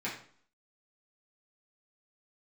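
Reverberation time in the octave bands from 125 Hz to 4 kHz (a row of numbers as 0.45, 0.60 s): 0.50, 0.60, 0.50, 0.55, 0.45, 0.45 s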